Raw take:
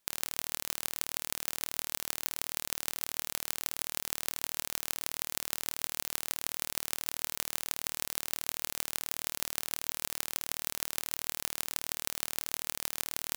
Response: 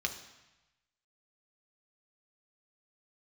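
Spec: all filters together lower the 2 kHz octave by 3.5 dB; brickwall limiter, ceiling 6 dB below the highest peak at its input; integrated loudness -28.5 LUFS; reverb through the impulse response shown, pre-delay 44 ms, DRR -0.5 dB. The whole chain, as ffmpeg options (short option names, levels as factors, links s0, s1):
-filter_complex "[0:a]equalizer=f=2000:t=o:g=-4.5,alimiter=limit=0.355:level=0:latency=1,asplit=2[s0][s1];[1:a]atrim=start_sample=2205,adelay=44[s2];[s1][s2]afir=irnorm=-1:irlink=0,volume=0.668[s3];[s0][s3]amix=inputs=2:normalize=0,volume=2.11"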